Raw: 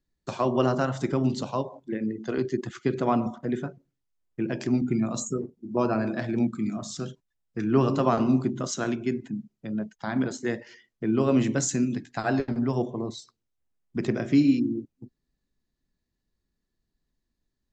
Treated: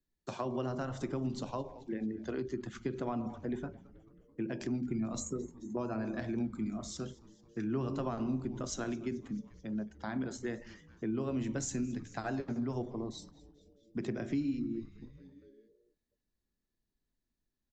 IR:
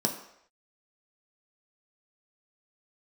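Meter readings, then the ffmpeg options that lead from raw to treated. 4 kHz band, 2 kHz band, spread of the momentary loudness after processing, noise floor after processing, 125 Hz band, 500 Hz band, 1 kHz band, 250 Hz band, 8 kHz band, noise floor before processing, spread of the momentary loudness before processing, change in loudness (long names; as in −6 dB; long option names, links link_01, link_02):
−9.5 dB, −10.5 dB, 10 LU, below −85 dBFS, −10.0 dB, −11.0 dB, −12.0 dB, −10.0 dB, −9.0 dB, −81 dBFS, 12 LU, −10.5 dB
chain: -filter_complex "[0:a]asplit=2[link_01][link_02];[link_02]asplit=5[link_03][link_04][link_05][link_06][link_07];[link_03]adelay=218,afreqshift=-140,volume=-21dB[link_08];[link_04]adelay=436,afreqshift=-280,volume=-25dB[link_09];[link_05]adelay=654,afreqshift=-420,volume=-29dB[link_10];[link_06]adelay=872,afreqshift=-560,volume=-33dB[link_11];[link_07]adelay=1090,afreqshift=-700,volume=-37.1dB[link_12];[link_08][link_09][link_10][link_11][link_12]amix=inputs=5:normalize=0[link_13];[link_01][link_13]amix=inputs=2:normalize=0,acrossover=split=130[link_14][link_15];[link_15]acompressor=threshold=-28dB:ratio=4[link_16];[link_14][link_16]amix=inputs=2:normalize=0,asplit=2[link_17][link_18];[1:a]atrim=start_sample=2205[link_19];[link_18][link_19]afir=irnorm=-1:irlink=0,volume=-27.5dB[link_20];[link_17][link_20]amix=inputs=2:normalize=0,volume=-7dB"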